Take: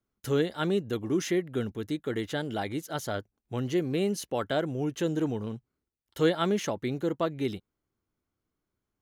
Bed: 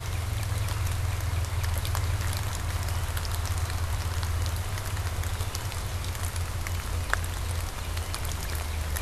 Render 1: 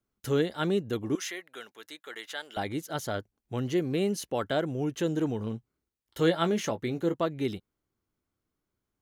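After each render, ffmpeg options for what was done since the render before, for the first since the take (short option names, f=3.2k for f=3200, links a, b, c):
-filter_complex "[0:a]asettb=1/sr,asplit=3[a][b][c];[a]atrim=end=1.154[d];[b]atrim=start=1.15:end=2.57,asetpts=PTS-STARTPTS,afade=t=in:d=0.004:c=qsin,afade=t=out:st=1.416:d=0.004:c=qsin,highpass=970[e];[c]atrim=start=2.566[f];[d][e]acrossfade=d=0.004:c1=hsin:c2=qsin[g];[g][f]acrossfade=d=0.004:c1=qsin:c2=hsin,asettb=1/sr,asplit=3[h][i][j];[h]atrim=end=5.374[k];[i]atrim=start=5.37:end=7.14,asetpts=PTS-STARTPTS,afade=t=in:d=0.004:c=qsin,afade=t=out:st=1.766:d=0.004:c=qsin,asplit=2[l][m];[m]adelay=18,volume=-10.5dB[n];[l][n]amix=inputs=2:normalize=0,atrim=end_sample=78057[o];[j]atrim=start=7.136[p];[k][o]acrossfade=d=0.004:c1=hsin:c2=qsin[q];[q][p]acrossfade=d=0.004:c1=qsin:c2=hsin"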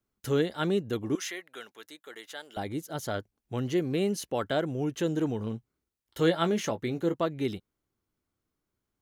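-filter_complex "[0:a]asettb=1/sr,asplit=3[a][b][c];[a]atrim=end=1.854[d];[b]atrim=start=1.85:end=3.03,asetpts=PTS-STARTPTS,afade=t=in:d=0.004:c=qsin,afade=t=out:st=1.176:d=0.004:c=qsin,equalizer=f=2.1k:w=0.41:g=-5.5[e];[c]atrim=start=3.026[f];[d][e]acrossfade=d=0.004:c1=hsin:c2=qsin[g];[g][f]acrossfade=d=0.004:c1=qsin:c2=hsin"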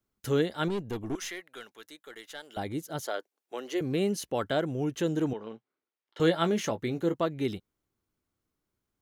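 -filter_complex "[0:a]asettb=1/sr,asplit=3[a][b][c];[a]atrim=end=0.684[d];[b]atrim=start=0.68:end=2.44,asetpts=PTS-STARTPTS,afade=t=in:d=0.004:c=qsin,afade=t=out:st=1.756:d=0.004:c=qsin,aeval=exprs='(tanh(22.4*val(0)+0.35)-tanh(0.35))/22.4':c=same[e];[c]atrim=start=2.436[f];[d][e]acrossfade=d=0.004:c1=hsin:c2=qsin[g];[g][f]acrossfade=d=0.004:c1=qsin:c2=hsin,asettb=1/sr,asplit=3[h][i][j];[h]atrim=end=3.024[k];[i]atrim=start=3.02:end=3.81,asetpts=PTS-STARTPTS,afade=t=in:d=0.004:c=qsin,afade=t=out:st=0.786:d=0.004:c=qsin,highpass=f=370:w=0.5412,highpass=f=370:w=1.3066[l];[j]atrim=start=3.806[m];[k][l]acrossfade=d=0.004:c1=hsin:c2=qsin[n];[n][m]acrossfade=d=0.004:c1=qsin:c2=hsin,asettb=1/sr,asplit=3[o][p][q];[o]atrim=end=5.334[r];[p]atrim=start=5.33:end=6.2,asetpts=PTS-STARTPTS,afade=t=in:d=0.004:c=qsin,afade=t=out:st=0.866:d=0.004:c=qsin,highpass=400,lowpass=3.3k[s];[q]atrim=start=6.196[t];[r][s]acrossfade=d=0.004:c1=hsin:c2=qsin[u];[u][t]acrossfade=d=0.004:c1=qsin:c2=hsin"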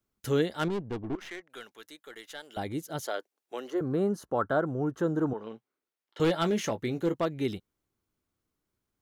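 -filter_complex "[0:a]asettb=1/sr,asplit=3[a][b][c];[a]atrim=end=0.594[d];[b]atrim=start=0.59:end=1.5,asetpts=PTS-STARTPTS,afade=t=in:d=0.004:c=qsin,afade=t=out:st=0.906:d=0.004:c=qsin,adynamicsmooth=sensitivity=7.5:basefreq=950[e];[c]atrim=start=1.496[f];[d][e]acrossfade=d=0.004:c1=hsin:c2=qsin[g];[g][f]acrossfade=d=0.004:c1=qsin:c2=hsin,asettb=1/sr,asplit=3[h][i][j];[h]atrim=end=3.704[k];[i]atrim=start=3.7:end=5.38,asetpts=PTS-STARTPTS,afade=t=in:d=0.004:c=qsin,afade=t=out:st=1.676:d=0.004:c=qsin,highshelf=f=1.8k:t=q:w=3:g=-10.5[l];[j]atrim=start=5.376[m];[k][l]acrossfade=d=0.004:c1=hsin:c2=qsin[n];[n][m]acrossfade=d=0.004:c1=qsin:c2=hsin,asettb=1/sr,asplit=3[o][p][q];[o]atrim=end=6.244[r];[p]atrim=start=6.24:end=7.27,asetpts=PTS-STARTPTS,afade=t=in:d=0.004:c=qsin,afade=t=out:st=1.026:d=0.004:c=qsin,asoftclip=type=hard:threshold=-20.5dB[s];[q]atrim=start=7.266[t];[r][s]acrossfade=d=0.004:c1=hsin:c2=qsin[u];[u][t]acrossfade=d=0.004:c1=qsin:c2=hsin"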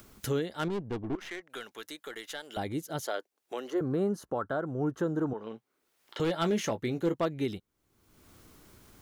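-af "acompressor=mode=upward:threshold=-34dB:ratio=2.5,alimiter=limit=-21dB:level=0:latency=1:release=274"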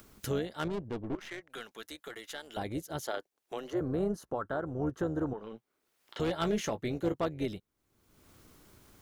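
-af "tremolo=f=230:d=0.519"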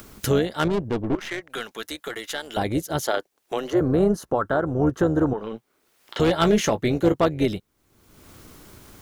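-af "volume=12dB"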